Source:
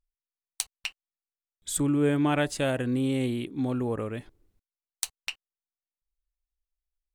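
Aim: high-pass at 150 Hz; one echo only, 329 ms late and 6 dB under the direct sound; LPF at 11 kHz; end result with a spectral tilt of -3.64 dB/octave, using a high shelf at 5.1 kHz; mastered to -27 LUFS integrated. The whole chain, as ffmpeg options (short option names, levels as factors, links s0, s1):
-af "highpass=150,lowpass=11000,highshelf=f=5100:g=8.5,aecho=1:1:329:0.501,volume=1.12"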